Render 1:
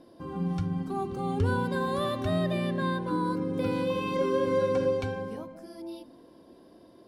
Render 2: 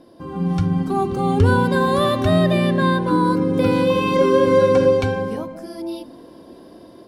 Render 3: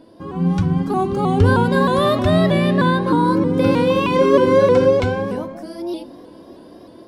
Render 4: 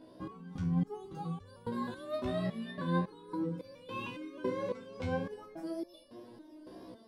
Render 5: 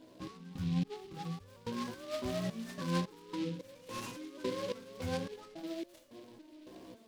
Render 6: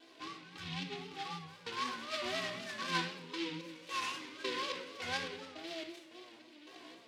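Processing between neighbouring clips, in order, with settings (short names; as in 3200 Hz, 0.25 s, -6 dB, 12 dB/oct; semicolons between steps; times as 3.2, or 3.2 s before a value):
AGC gain up to 6 dB; gain +5.5 dB
high shelf 9600 Hz -5 dB; flange 0.31 Hz, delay 8.8 ms, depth 9.3 ms, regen +86%; shaped vibrato saw up 3.2 Hz, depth 100 cents; gain +6 dB
reverse; compressor 12:1, threshold -23 dBFS, peak gain reduction 15.5 dB; reverse; stepped resonator 3.6 Hz 63–580 Hz
noise-modulated delay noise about 3100 Hz, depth 0.069 ms; gain -2 dB
band-pass 2600 Hz, Q 0.84; shoebox room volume 3400 m³, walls furnished, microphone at 3.5 m; vibrato 3.9 Hz 68 cents; gain +7 dB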